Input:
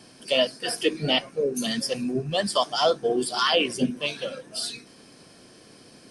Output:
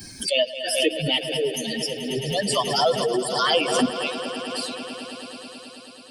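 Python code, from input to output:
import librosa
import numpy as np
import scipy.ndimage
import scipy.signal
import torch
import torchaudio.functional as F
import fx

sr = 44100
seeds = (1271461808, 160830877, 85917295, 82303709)

y = fx.bin_expand(x, sr, power=2.0)
y = fx.echo_swell(y, sr, ms=108, loudest=5, wet_db=-15.5)
y = fx.dmg_crackle(y, sr, seeds[0], per_s=18.0, level_db=-41.0, at=(0.95, 2.75), fade=0.02)
y = fx.pre_swell(y, sr, db_per_s=49.0)
y = y * librosa.db_to_amplitude(3.0)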